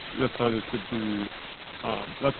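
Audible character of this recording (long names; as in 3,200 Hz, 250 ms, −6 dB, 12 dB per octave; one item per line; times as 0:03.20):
aliases and images of a low sample rate 1,800 Hz, jitter 0%
tremolo triangle 0.84 Hz, depth 60%
a quantiser's noise floor 6 bits, dither triangular
Opus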